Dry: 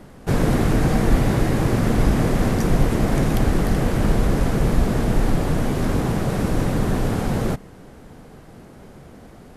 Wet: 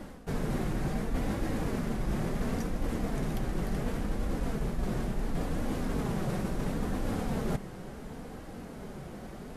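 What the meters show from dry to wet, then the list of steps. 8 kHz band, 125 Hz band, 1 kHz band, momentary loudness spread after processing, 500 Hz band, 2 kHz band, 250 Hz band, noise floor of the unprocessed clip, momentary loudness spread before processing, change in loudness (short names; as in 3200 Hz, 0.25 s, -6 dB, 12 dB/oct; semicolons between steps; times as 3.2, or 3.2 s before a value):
-12.5 dB, -14.0 dB, -12.0 dB, 11 LU, -12.5 dB, -12.5 dB, -12.0 dB, -44 dBFS, 3 LU, -13.5 dB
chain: flange 0.71 Hz, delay 3.5 ms, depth 2.2 ms, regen -40%; reverse; compressor 8:1, threshold -32 dBFS, peak gain reduction 18.5 dB; reverse; gain +4 dB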